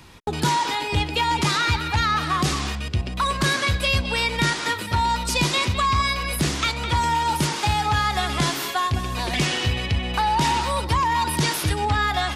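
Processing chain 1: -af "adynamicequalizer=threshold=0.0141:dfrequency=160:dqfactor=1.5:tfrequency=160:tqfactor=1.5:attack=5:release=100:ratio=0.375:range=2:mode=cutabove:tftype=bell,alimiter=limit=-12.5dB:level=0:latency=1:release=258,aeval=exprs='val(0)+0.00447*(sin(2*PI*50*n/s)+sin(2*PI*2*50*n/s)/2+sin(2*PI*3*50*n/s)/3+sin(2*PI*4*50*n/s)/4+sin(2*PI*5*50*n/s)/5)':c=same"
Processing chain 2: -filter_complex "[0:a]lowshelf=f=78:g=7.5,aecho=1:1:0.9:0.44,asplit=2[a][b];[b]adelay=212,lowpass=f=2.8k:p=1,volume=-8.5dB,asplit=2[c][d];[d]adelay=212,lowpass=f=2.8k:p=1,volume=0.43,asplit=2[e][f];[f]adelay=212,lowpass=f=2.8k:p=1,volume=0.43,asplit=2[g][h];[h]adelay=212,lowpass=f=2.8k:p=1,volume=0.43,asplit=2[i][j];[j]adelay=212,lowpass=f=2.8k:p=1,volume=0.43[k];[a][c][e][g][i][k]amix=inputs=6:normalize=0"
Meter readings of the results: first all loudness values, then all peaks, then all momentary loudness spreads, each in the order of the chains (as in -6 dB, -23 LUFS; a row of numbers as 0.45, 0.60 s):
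-23.5, -19.0 LUFS; -12.0, -3.5 dBFS; 3, 3 LU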